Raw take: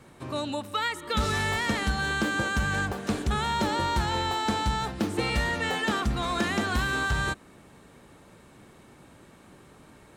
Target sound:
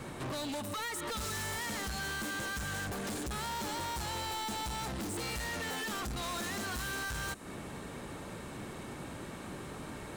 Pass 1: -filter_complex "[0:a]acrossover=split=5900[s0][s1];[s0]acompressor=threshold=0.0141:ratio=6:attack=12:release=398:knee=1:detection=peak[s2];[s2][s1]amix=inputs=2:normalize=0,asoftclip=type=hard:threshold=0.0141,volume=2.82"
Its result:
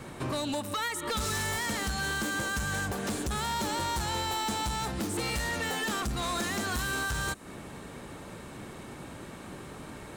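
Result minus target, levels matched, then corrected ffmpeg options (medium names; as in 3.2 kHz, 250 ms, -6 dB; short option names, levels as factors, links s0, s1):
hard clipper: distortion -6 dB
-filter_complex "[0:a]acrossover=split=5900[s0][s1];[s0]acompressor=threshold=0.0141:ratio=6:attack=12:release=398:knee=1:detection=peak[s2];[s2][s1]amix=inputs=2:normalize=0,asoftclip=type=hard:threshold=0.00562,volume=2.82"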